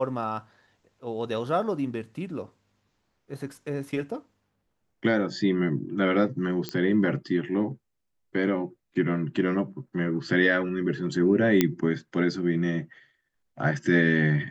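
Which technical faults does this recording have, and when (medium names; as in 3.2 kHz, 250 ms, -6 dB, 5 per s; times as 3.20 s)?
6.69 s: pop -15 dBFS
11.61 s: pop -6 dBFS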